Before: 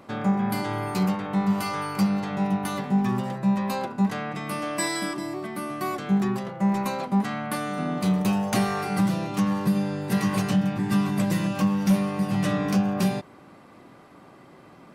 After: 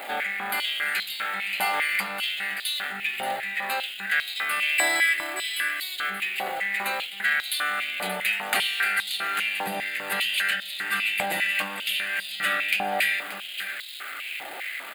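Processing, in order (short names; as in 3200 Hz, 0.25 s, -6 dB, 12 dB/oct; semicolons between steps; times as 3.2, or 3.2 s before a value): zero-crossing step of -35.5 dBFS; fixed phaser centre 2500 Hz, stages 4; on a send: echo 0.579 s -9 dB; on the sum: stepped high-pass 5 Hz 850–3800 Hz; gain +7 dB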